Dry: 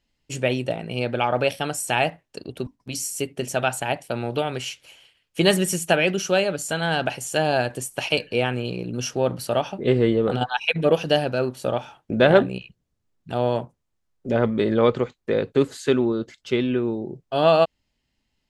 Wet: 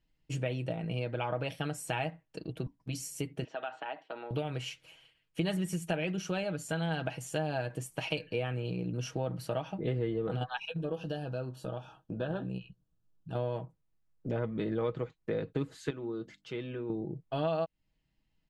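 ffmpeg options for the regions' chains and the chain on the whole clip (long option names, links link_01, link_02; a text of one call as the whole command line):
ffmpeg -i in.wav -filter_complex "[0:a]asettb=1/sr,asplit=3[link_01][link_02][link_03];[link_01]atrim=end=3.444[link_04];[link_02]atrim=start=3.44:end=4.31,asetpts=PTS-STARTPTS,afade=type=in:duration=0.004:curve=qsin,afade=type=out:start_time=0.866:duration=0.004:curve=qsin,acompressor=threshold=-24dB:ratio=5:attack=3.2:release=140:knee=1:detection=peak,highpass=frequency=320:width=0.5412,highpass=frequency=320:width=1.3066,equalizer=frequency=350:width_type=q:width=4:gain=-6,equalizer=frequency=510:width_type=q:width=4:gain=-6,equalizer=frequency=2300:width_type=q:width=4:gain=-7,lowpass=frequency=3600:width=0.5412,lowpass=frequency=3600:width=1.3066[link_05];[link_03]atrim=start=4.306[link_06];[link_04][link_05]acrossfade=duration=0.004:curve1=hsin:curve2=qsin[link_07];[link_07][link_06]acrossfade=duration=0.004:curve1=qsin:curve2=hsin,asettb=1/sr,asplit=3[link_08][link_09][link_10];[link_08]atrim=end=10.654[link_11];[link_09]atrim=start=10.65:end=13.35,asetpts=PTS-STARTPTS,afade=type=in:duration=0.004:curve=qsin,afade=type=out:start_time=2.696:duration=0.004:curve=qsin,acompressor=threshold=-42dB:ratio=1.5:attack=3.2:release=140:knee=1:detection=peak,asuperstop=centerf=2100:order=4:qfactor=2.6,asplit=2[link_12][link_13];[link_13]adelay=16,volume=-11dB[link_14];[link_12][link_14]amix=inputs=2:normalize=0,atrim=end_sample=119070[link_15];[link_10]atrim=start=13.346[link_16];[link_11][link_15]acrossfade=duration=0.004:curve1=hsin:curve2=qsin[link_17];[link_17][link_16]acrossfade=duration=0.004:curve1=qsin:curve2=hsin,asettb=1/sr,asplit=3[link_18][link_19][link_20];[link_18]atrim=end=15.904[link_21];[link_19]atrim=start=15.9:end=16.9,asetpts=PTS-STARTPTS,afade=type=in:duration=0.004:curve=qsin,afade=type=out:start_time=0.996:duration=0.004:curve=qsin,lowshelf=frequency=150:gain=-7,bandreject=frequency=50:width_type=h:width=6,bandreject=frequency=100:width_type=h:width=6,bandreject=frequency=150:width_type=h:width=6,bandreject=frequency=200:width_type=h:width=6,bandreject=frequency=250:width_type=h:width=6,bandreject=frequency=300:width_type=h:width=6,acompressor=threshold=-40dB:ratio=1.5:attack=3.2:release=140:knee=1:detection=peak[link_22];[link_20]atrim=start=16.896[link_23];[link_21][link_22]acrossfade=duration=0.004:curve1=hsin:curve2=qsin[link_24];[link_24][link_23]acrossfade=duration=0.004:curve1=qsin:curve2=hsin,bass=frequency=250:gain=6,treble=frequency=4000:gain=-7,aecho=1:1:6.3:0.51,acompressor=threshold=-24dB:ratio=3,volume=-7.5dB" out.wav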